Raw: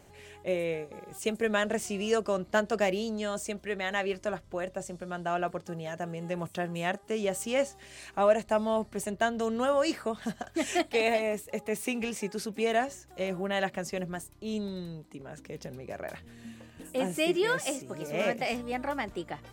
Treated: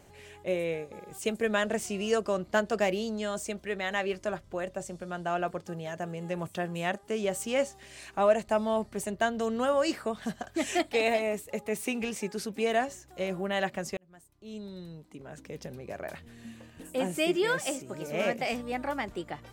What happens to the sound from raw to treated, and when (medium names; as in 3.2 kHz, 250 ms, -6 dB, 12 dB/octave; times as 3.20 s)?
13.97–15.44 s: fade in